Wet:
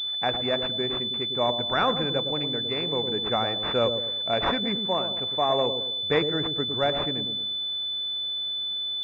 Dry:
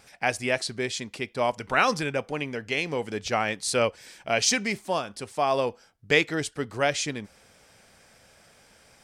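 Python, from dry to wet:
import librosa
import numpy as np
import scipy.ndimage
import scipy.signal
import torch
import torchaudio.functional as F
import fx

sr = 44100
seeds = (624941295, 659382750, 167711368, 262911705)

y = fx.echo_wet_lowpass(x, sr, ms=108, feedback_pct=41, hz=620.0, wet_db=-5.5)
y = fx.pwm(y, sr, carrier_hz=3500.0)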